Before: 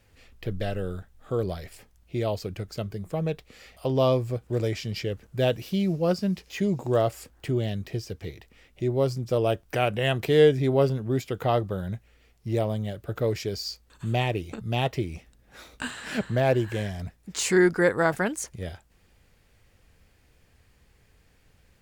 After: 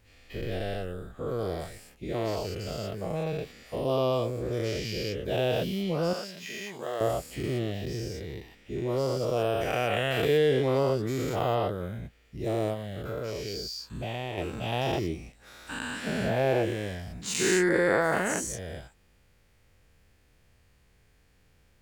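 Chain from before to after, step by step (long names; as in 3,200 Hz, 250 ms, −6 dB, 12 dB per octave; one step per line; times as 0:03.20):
every bin's largest magnitude spread in time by 240 ms
0:06.13–0:07.01: high-pass filter 1,200 Hz 6 dB per octave
0:12.73–0:14.38: downward compressor 3 to 1, threshold −24 dBFS, peak gain reduction 6.5 dB
level −8 dB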